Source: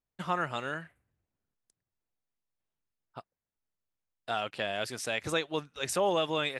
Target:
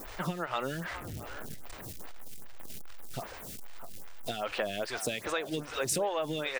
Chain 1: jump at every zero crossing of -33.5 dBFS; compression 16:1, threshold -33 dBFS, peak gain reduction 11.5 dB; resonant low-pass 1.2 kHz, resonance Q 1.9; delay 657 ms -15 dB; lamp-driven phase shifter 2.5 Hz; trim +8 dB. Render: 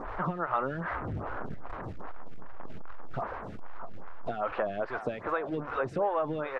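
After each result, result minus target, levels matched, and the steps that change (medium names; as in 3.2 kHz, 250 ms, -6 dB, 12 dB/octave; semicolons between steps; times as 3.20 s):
1 kHz band +4.0 dB; jump at every zero crossing: distortion +5 dB
remove: resonant low-pass 1.2 kHz, resonance Q 1.9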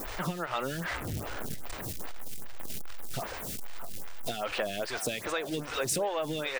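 jump at every zero crossing: distortion +5 dB
change: jump at every zero crossing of -39.5 dBFS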